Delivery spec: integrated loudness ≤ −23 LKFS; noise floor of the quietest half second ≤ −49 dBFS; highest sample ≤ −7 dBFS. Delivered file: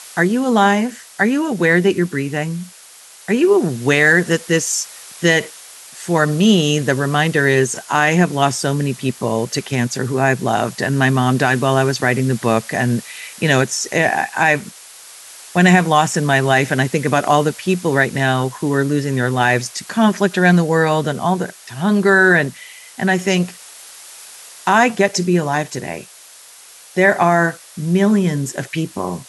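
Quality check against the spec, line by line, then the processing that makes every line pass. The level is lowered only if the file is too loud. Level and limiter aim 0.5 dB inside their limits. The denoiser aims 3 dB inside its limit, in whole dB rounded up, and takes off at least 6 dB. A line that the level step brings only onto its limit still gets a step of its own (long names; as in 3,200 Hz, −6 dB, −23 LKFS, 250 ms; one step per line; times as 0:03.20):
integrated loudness −16.5 LKFS: out of spec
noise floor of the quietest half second −42 dBFS: out of spec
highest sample −1.5 dBFS: out of spec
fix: broadband denoise 6 dB, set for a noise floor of −42 dBFS
level −7 dB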